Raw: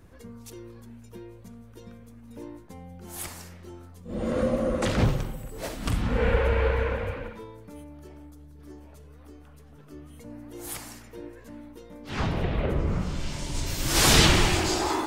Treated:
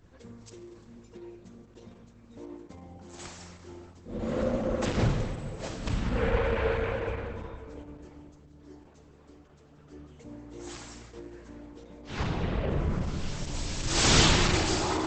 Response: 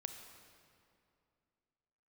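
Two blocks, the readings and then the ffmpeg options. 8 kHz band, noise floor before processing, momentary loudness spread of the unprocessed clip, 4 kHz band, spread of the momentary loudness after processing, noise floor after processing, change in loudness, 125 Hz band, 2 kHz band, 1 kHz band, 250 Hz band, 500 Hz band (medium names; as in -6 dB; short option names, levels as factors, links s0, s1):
-3.0 dB, -49 dBFS, 23 LU, -2.5 dB, 23 LU, -56 dBFS, -2.5 dB, -3.0 dB, -3.0 dB, -3.0 dB, -2.5 dB, -2.5 dB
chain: -filter_complex "[1:a]atrim=start_sample=2205[s0];[0:a][s0]afir=irnorm=-1:irlink=0" -ar 48000 -c:a libopus -b:a 10k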